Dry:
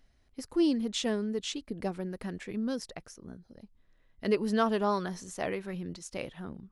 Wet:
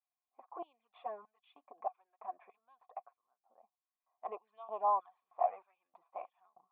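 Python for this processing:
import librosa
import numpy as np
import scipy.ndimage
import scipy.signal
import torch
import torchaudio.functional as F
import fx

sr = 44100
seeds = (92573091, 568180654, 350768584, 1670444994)

y = fx.env_flanger(x, sr, rest_ms=11.9, full_db=-24.0)
y = fx.filter_lfo_highpass(y, sr, shape='square', hz=1.6, low_hz=820.0, high_hz=3200.0, q=0.98)
y = fx.formant_cascade(y, sr, vowel='a')
y = F.gain(torch.from_numpy(y), 14.5).numpy()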